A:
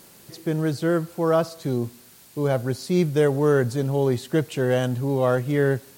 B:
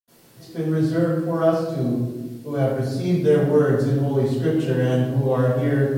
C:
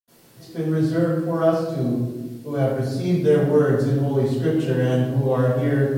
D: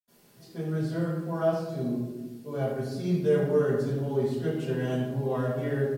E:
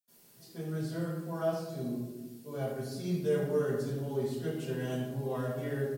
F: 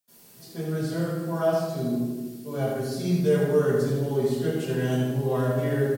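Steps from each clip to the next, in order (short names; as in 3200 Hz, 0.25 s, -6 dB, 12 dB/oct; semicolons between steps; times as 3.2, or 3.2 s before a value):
reverb RT60 1.2 s, pre-delay 76 ms; gain -8 dB
nothing audible
comb 4.9 ms, depth 46%; gain -8 dB
high shelf 4700 Hz +10.5 dB; gain -6 dB
feedback echo 79 ms, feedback 54%, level -8 dB; gain +7.5 dB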